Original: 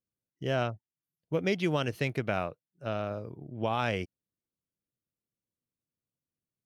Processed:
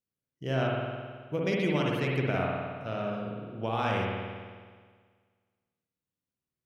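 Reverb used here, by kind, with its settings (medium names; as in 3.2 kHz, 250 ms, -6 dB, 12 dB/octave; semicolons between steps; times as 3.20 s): spring tank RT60 1.7 s, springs 53 ms, chirp 50 ms, DRR -2.5 dB; trim -3 dB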